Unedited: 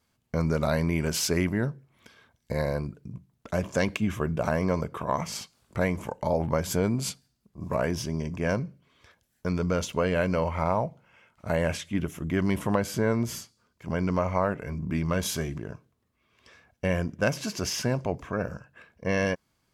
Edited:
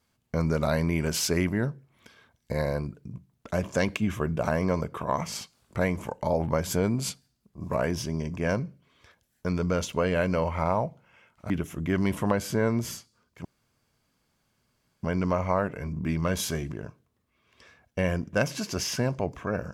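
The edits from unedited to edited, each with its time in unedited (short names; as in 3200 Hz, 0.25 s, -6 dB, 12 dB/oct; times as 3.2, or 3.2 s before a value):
11.5–11.94 cut
13.89 insert room tone 1.58 s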